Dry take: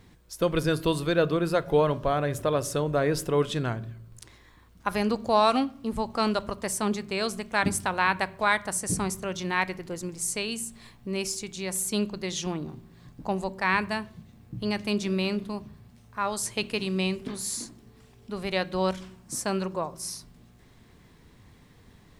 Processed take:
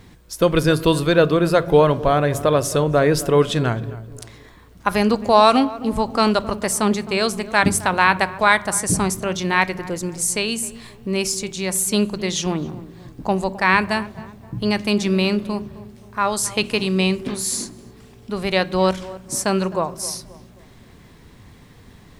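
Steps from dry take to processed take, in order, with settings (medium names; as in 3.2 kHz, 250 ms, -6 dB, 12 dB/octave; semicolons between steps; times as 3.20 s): tape echo 263 ms, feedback 48%, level -15 dB, low-pass 1.1 kHz; trim +8.5 dB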